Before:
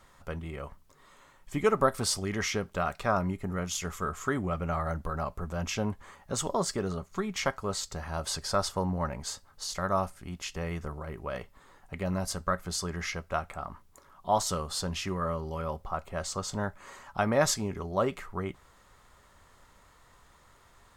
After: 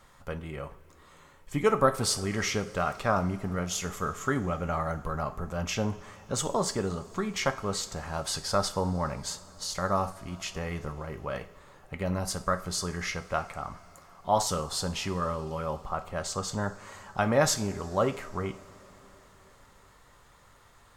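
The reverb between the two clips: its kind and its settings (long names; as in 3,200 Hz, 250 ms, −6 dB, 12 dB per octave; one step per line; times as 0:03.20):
coupled-rooms reverb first 0.41 s, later 4.5 s, from −19 dB, DRR 8.5 dB
level +1 dB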